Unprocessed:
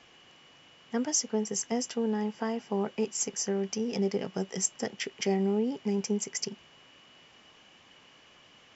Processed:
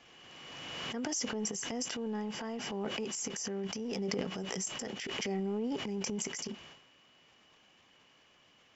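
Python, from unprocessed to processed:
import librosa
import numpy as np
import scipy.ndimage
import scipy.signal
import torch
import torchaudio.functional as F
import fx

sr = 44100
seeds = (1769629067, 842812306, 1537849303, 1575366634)

y = fx.transient(x, sr, attack_db=-4, sustain_db=12)
y = fx.pre_swell(y, sr, db_per_s=25.0)
y = y * librosa.db_to_amplitude(-7.5)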